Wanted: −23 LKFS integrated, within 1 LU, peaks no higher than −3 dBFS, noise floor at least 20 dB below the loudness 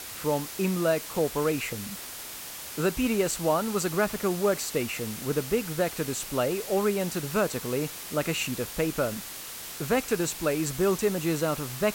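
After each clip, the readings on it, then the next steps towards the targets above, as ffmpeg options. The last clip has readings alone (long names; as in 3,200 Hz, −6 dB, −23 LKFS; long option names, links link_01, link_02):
background noise floor −40 dBFS; target noise floor −49 dBFS; integrated loudness −28.5 LKFS; sample peak −12.0 dBFS; target loudness −23.0 LKFS
→ -af "afftdn=noise_reduction=9:noise_floor=-40"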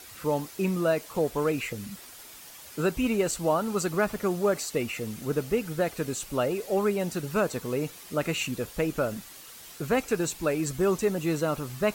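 background noise floor −47 dBFS; target noise floor −49 dBFS
→ -af "afftdn=noise_reduction=6:noise_floor=-47"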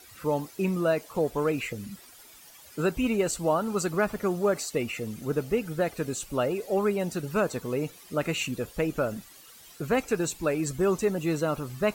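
background noise floor −51 dBFS; integrated loudness −28.5 LKFS; sample peak −13.0 dBFS; target loudness −23.0 LKFS
→ -af "volume=5.5dB"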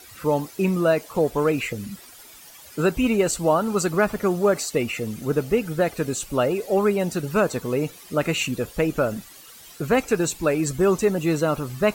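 integrated loudness −23.0 LKFS; sample peak −7.5 dBFS; background noise floor −46 dBFS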